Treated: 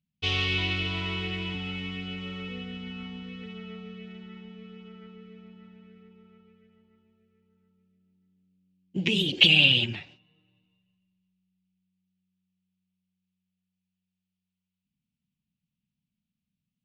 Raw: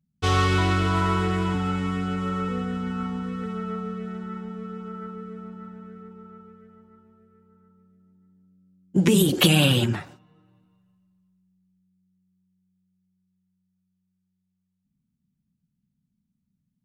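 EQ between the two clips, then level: air absorption 220 m; resonant high shelf 1900 Hz +12 dB, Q 3; -9.5 dB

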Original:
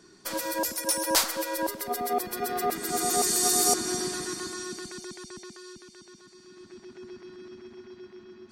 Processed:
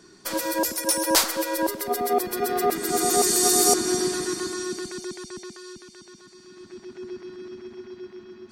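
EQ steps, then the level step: dynamic EQ 370 Hz, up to +5 dB, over -46 dBFS, Q 2.6; +3.5 dB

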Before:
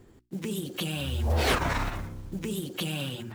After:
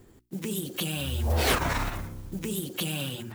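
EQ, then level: high shelf 8600 Hz +10 dB; 0.0 dB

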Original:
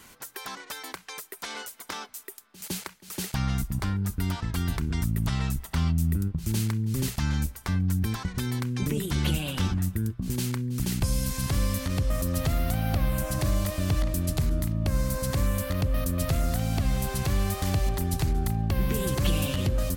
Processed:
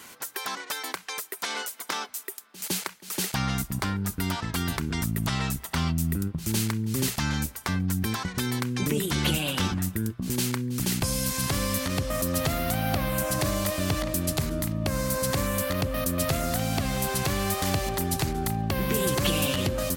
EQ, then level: HPF 260 Hz 6 dB/oct; +5.5 dB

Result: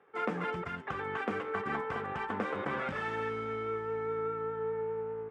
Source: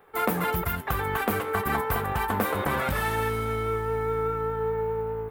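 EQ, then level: air absorption 150 m; speaker cabinet 180–9000 Hz, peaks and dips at 670 Hz -4 dB, 940 Hz -4 dB, 4100 Hz -7 dB; -5.5 dB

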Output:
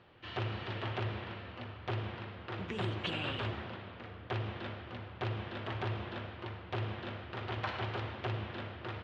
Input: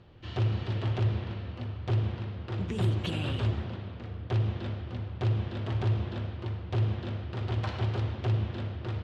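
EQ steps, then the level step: LPF 2100 Hz 12 dB/oct; tilt +4 dB/oct; +1.5 dB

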